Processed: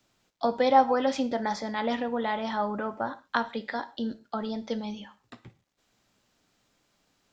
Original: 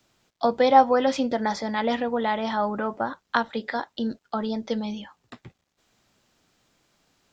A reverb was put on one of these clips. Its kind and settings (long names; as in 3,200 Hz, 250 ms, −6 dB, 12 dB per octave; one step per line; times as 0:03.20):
reverb whose tail is shaped and stops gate 160 ms falling, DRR 11.5 dB
level −4 dB